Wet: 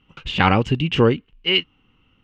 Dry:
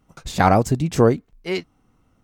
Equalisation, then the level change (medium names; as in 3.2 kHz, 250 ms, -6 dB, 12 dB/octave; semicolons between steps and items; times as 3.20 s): resonant low-pass 2.9 kHz, resonance Q 11; peaking EQ 670 Hz -15 dB 0.24 oct; 0.0 dB